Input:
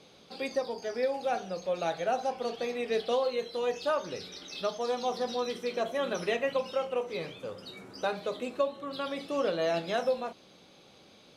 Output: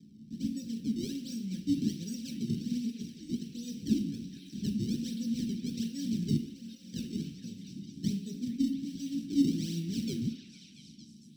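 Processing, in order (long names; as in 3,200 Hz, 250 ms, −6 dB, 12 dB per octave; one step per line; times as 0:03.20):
0:02.42–0:03.43: compressor whose output falls as the input rises −35 dBFS, ratio −0.5
sample-and-hold swept by an LFO 30×, swing 160% 1.3 Hz
echo through a band-pass that steps 228 ms, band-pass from 1,100 Hz, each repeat 0.7 octaves, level −3 dB
0:06.37–0:06.94: output level in coarse steps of 21 dB
elliptic band-stop filter 250–3,000 Hz, stop band 80 dB
high-shelf EQ 4,300 Hz −9 dB
convolution reverb RT60 0.75 s, pre-delay 3 ms, DRR 1.5 dB
level −8 dB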